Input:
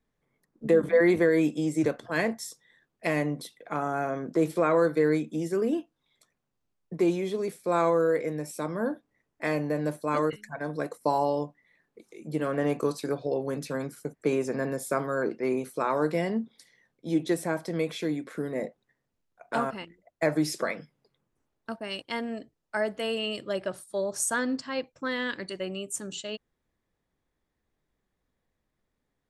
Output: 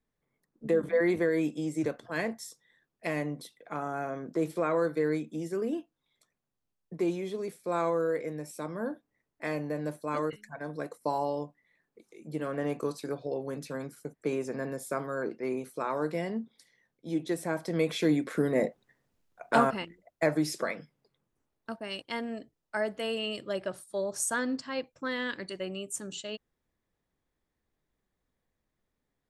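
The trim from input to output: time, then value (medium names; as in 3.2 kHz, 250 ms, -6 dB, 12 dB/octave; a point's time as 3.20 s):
17.30 s -5 dB
18.15 s +5 dB
19.59 s +5 dB
20.43 s -2.5 dB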